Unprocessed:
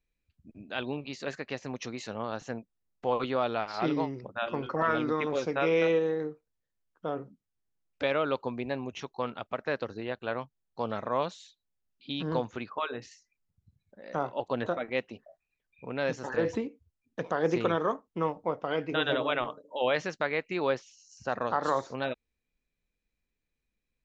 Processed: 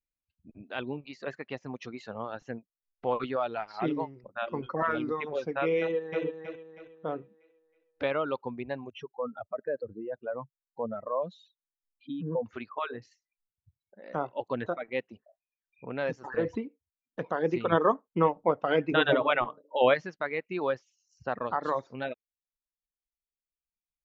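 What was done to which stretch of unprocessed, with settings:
0:05.80–0:06.23: delay throw 320 ms, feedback 45%, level −3 dB
0:08.90–0:12.46: expanding power law on the bin magnitudes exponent 2.2
0:17.72–0:19.94: clip gain +6.5 dB
whole clip: noise reduction from a noise print of the clip's start 14 dB; Bessel low-pass filter 2,700 Hz, order 2; reverb reduction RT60 1.6 s

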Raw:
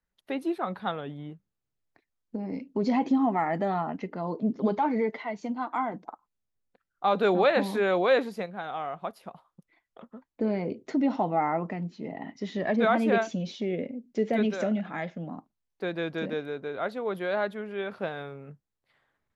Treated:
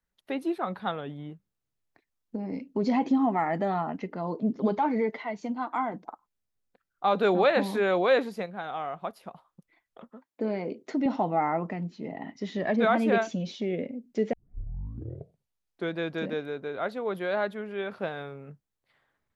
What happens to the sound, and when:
0:10.10–0:11.06: Bessel high-pass filter 240 Hz
0:14.33: tape start 1.64 s

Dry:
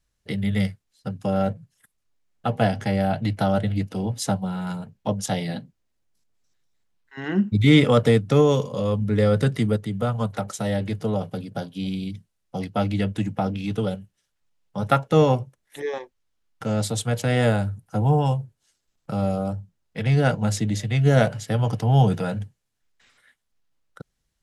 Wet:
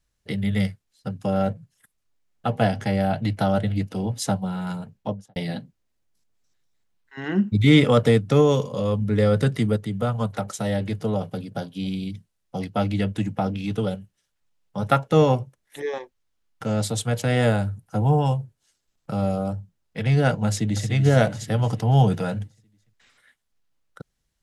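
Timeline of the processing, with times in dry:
0:04.94–0:05.36: fade out and dull
0:20.47–0:20.90: delay throw 290 ms, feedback 55%, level −8 dB

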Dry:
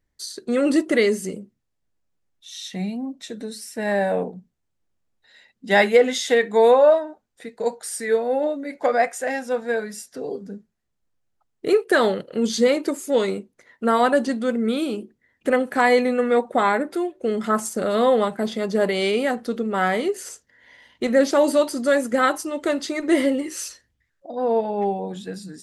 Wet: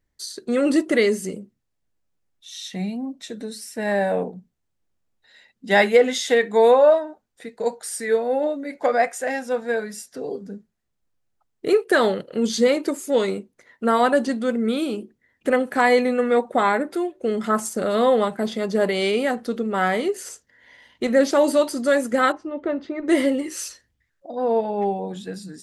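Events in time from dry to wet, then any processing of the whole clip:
0:22.32–0:23.08: head-to-tape spacing loss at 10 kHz 44 dB

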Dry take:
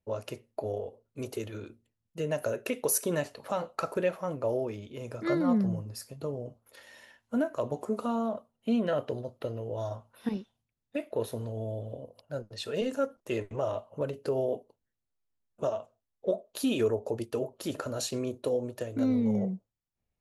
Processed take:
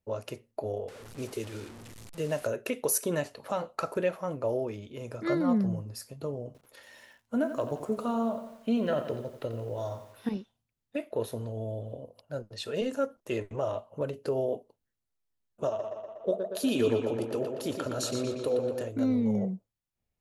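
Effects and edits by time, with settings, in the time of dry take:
0:00.88–0:02.47: linear delta modulator 64 kbit/s, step −41 dBFS
0:06.46–0:10.30: feedback echo at a low word length 87 ms, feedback 55%, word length 9 bits, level −10 dB
0:15.67–0:18.89: tape delay 119 ms, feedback 69%, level −4 dB, low-pass 5,300 Hz

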